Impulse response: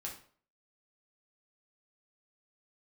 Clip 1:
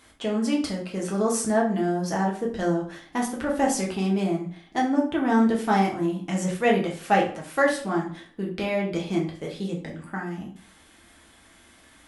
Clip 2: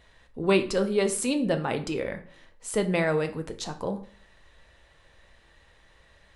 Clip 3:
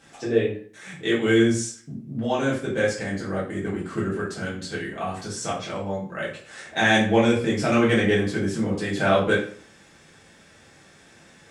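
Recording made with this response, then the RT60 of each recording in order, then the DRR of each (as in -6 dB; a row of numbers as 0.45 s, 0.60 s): 1; 0.50 s, 0.50 s, 0.50 s; -2.5 dB, 6.5 dB, -7.5 dB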